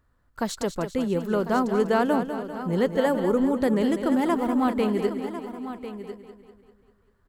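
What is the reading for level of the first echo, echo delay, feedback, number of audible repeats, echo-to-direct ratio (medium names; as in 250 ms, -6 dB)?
-9.5 dB, 197 ms, no regular repeats, 9, -6.5 dB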